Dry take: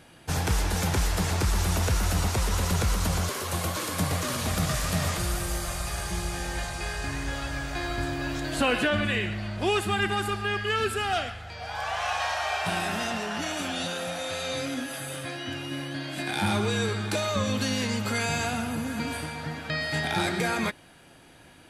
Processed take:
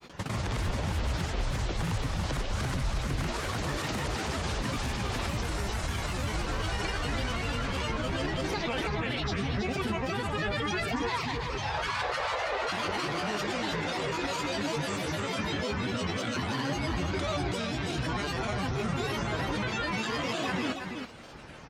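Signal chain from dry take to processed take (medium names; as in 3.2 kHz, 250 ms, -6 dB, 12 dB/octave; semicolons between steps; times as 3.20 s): compression, threshold -30 dBFS, peak gain reduction 9.5 dB; peak limiter -28.5 dBFS, peak gain reduction 9 dB; granulator, pitch spread up and down by 12 st; distance through air 61 m; on a send: delay 325 ms -6.5 dB; on the sum: trim +7 dB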